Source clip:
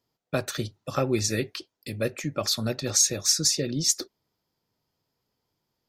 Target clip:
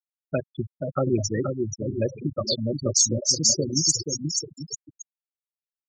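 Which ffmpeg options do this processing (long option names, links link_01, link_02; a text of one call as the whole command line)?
ffmpeg -i in.wav -filter_complex "[0:a]asettb=1/sr,asplit=3[link_01][link_02][link_03];[link_01]atrim=end=0.614[link_04];[link_02]atrim=start=0.61:end=1.1,asetpts=PTS-STARTPTS,afade=type=in:duration=0.004:curve=qsin,afade=type=out:start_time=0.486:duration=0.004:curve=qsin,bandreject=frequency=101.8:width_type=h:width=4,bandreject=frequency=203.6:width_type=h:width=4,bandreject=frequency=305.4:width_type=h:width=4,bandreject=frequency=407.2:width_type=h:width=4,bandreject=frequency=509:width_type=h:width=4,bandreject=frequency=610.8:width_type=h:width=4,bandreject=frequency=712.6:width_type=h:width=4,bandreject=frequency=814.4:width_type=h:width=4,bandreject=frequency=916.2:width_type=h:width=4,bandreject=frequency=1018:width_type=h:width=4,bandreject=frequency=1119.8:width_type=h:width=4,bandreject=frequency=1221.6:width_type=h:width=4,bandreject=frequency=1323.4:width_type=h:width=4,bandreject=frequency=1425.2:width_type=h:width=4,bandreject=frequency=1527:width_type=h:width=4,bandreject=frequency=1628.8:width_type=h:width=4,bandreject=frequency=1730.6:width_type=h:width=4,bandreject=frequency=1832.4:width_type=h:width=4,bandreject=frequency=1934.2:width_type=h:width=4,bandreject=frequency=2036:width_type=h:width=4,bandreject=frequency=2137.8:width_type=h:width=4,bandreject=frequency=2239.6:width_type=h:width=4,bandreject=frequency=2341.4:width_type=h:width=4[link_05];[link_03]atrim=start=1.096[link_06];[link_04][link_05]acrossfade=duration=0.004:curve1=hsin:curve2=qsin[link_07];[link_07][link_06]acrossfade=duration=0.004:curve1=qsin:curve2=hsin,aecho=1:1:480|840|1110|1312|1464:0.631|0.398|0.251|0.158|0.1,afftfilt=real='re*gte(hypot(re,im),0.141)':imag='im*gte(hypot(re,im),0.141)':win_size=1024:overlap=0.75,volume=2dB" out.wav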